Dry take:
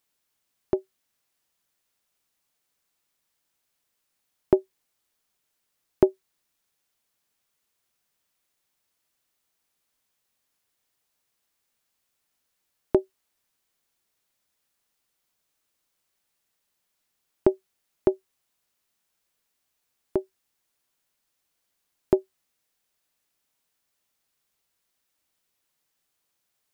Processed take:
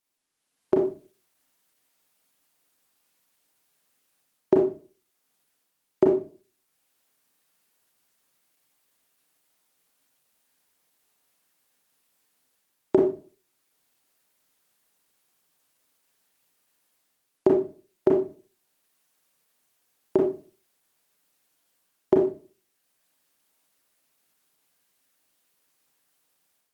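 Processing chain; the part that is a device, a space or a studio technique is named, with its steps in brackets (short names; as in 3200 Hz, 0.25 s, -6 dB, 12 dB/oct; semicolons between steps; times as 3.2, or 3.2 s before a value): far-field microphone of a smart speaker (reverb RT60 0.35 s, pre-delay 29 ms, DRR -1 dB; HPF 150 Hz 12 dB/oct; AGC gain up to 10 dB; gain -5.5 dB; Opus 20 kbps 48000 Hz)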